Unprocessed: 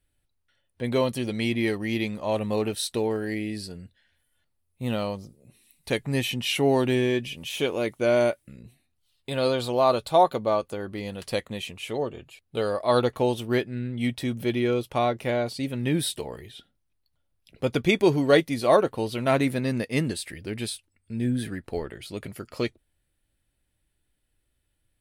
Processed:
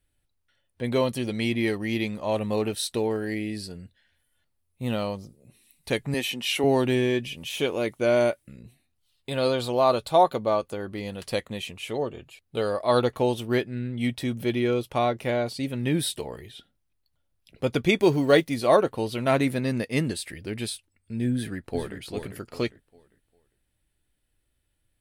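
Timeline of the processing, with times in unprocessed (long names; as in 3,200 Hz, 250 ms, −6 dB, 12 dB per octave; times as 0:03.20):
0:06.14–0:06.64: high-pass filter 260 Hz
0:18.02–0:18.60: one scale factor per block 7 bits
0:21.34–0:21.99: delay throw 400 ms, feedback 30%, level −6.5 dB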